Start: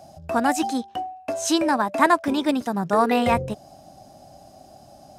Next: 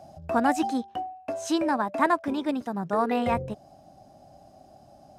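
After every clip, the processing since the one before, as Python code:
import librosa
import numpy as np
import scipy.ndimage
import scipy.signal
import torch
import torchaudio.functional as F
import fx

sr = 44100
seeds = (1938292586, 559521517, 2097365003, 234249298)

y = fx.high_shelf(x, sr, hz=3100.0, db=-8.5)
y = fx.rider(y, sr, range_db=4, speed_s=2.0)
y = y * 10.0 ** (-4.5 / 20.0)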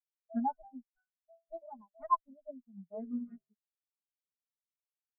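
y = fx.lower_of_two(x, sr, delay_ms=4.8)
y = fx.spectral_expand(y, sr, expansion=4.0)
y = y * 10.0 ** (-7.5 / 20.0)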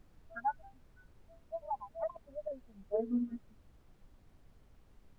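y = fx.filter_sweep_highpass(x, sr, from_hz=1400.0, to_hz=110.0, start_s=1.04, end_s=4.92, q=6.0)
y = fx.over_compress(y, sr, threshold_db=-34.0, ratio=-0.5)
y = fx.dmg_noise_colour(y, sr, seeds[0], colour='brown', level_db=-60.0)
y = y * 10.0 ** (1.0 / 20.0)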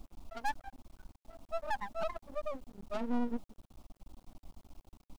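y = 10.0 ** (-38.0 / 20.0) * np.tanh(x / 10.0 ** (-38.0 / 20.0))
y = fx.fixed_phaser(y, sr, hz=450.0, stages=6)
y = np.maximum(y, 0.0)
y = y * 10.0 ** (13.0 / 20.0)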